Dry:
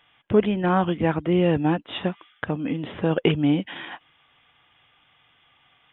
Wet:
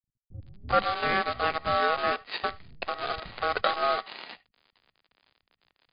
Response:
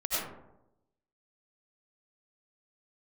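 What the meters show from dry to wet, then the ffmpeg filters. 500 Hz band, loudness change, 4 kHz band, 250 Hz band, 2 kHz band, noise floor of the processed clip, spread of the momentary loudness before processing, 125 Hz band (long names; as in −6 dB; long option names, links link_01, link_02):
−6.5 dB, −4.5 dB, can't be measured, −20.5 dB, +2.5 dB, below −85 dBFS, 14 LU, −18.0 dB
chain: -filter_complex "[0:a]aeval=exprs='if(lt(val(0),0),0.251*val(0),val(0))':channel_layout=same,highpass=86,highshelf=frequency=2300:gain=7,aeval=exprs='val(0)*sin(2*PI*960*n/s)':channel_layout=same,aresample=11025,acrusher=bits=6:dc=4:mix=0:aa=0.000001,aresample=44100,acrossover=split=190[link_01][link_02];[link_02]adelay=390[link_03];[link_01][link_03]amix=inputs=2:normalize=0,asplit=2[link_04][link_05];[1:a]atrim=start_sample=2205,atrim=end_sample=3528[link_06];[link_05][link_06]afir=irnorm=-1:irlink=0,volume=-16dB[link_07];[link_04][link_07]amix=inputs=2:normalize=0" -ar 11025 -c:a libmp3lame -b:a 48k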